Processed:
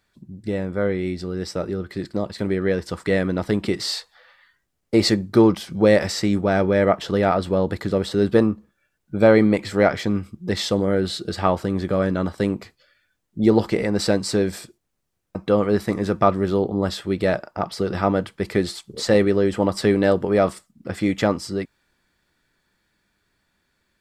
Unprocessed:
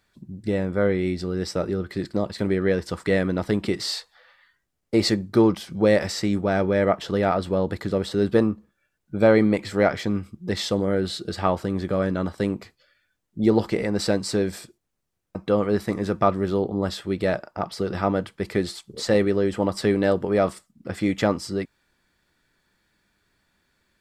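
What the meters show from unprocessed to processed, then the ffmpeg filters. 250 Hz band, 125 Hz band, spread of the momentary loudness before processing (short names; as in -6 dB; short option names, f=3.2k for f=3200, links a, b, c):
+2.5 dB, +2.5 dB, 9 LU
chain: -af "dynaudnorm=f=410:g=17:m=11.5dB,volume=-1dB"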